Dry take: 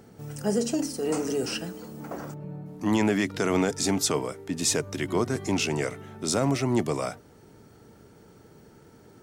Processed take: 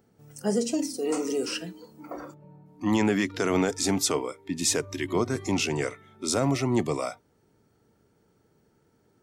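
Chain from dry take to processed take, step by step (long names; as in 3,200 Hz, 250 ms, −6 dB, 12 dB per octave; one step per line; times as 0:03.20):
noise reduction from a noise print of the clip's start 13 dB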